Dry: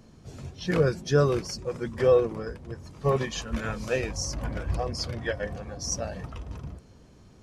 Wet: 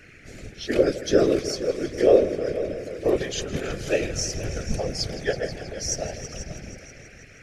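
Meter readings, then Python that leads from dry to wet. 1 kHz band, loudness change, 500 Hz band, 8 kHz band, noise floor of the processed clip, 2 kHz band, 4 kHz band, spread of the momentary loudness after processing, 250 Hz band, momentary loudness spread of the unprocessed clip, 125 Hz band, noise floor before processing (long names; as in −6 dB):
−2.0 dB, +3.0 dB, +4.0 dB, +4.5 dB, −48 dBFS, +1.5 dB, +4.5 dB, 17 LU, +5.0 dB, 17 LU, −3.5 dB, −54 dBFS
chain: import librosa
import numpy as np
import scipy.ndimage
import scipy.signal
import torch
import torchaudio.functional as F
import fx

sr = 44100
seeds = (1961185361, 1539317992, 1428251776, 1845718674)

y = fx.dmg_noise_band(x, sr, seeds[0], low_hz=1300.0, high_hz=2500.0, level_db=-53.0)
y = fx.fixed_phaser(y, sr, hz=410.0, stages=4)
y = fx.echo_heads(y, sr, ms=161, heads='all three', feedback_pct=50, wet_db=-16)
y = fx.whisperise(y, sr, seeds[1])
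y = F.gain(torch.from_numpy(y), 4.5).numpy()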